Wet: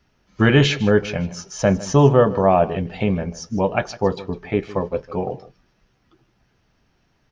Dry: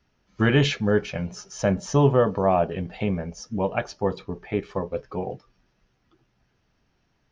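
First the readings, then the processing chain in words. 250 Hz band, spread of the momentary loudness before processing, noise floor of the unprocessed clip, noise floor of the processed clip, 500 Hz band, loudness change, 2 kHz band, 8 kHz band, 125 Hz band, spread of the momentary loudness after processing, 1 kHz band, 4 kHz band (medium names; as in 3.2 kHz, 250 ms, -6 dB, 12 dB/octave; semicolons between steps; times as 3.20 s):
+5.0 dB, 12 LU, -70 dBFS, -65 dBFS, +5.0 dB, +5.0 dB, +5.0 dB, no reading, +5.0 dB, 12 LU, +5.0 dB, +5.0 dB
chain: delay 155 ms -17.5 dB; trim +5 dB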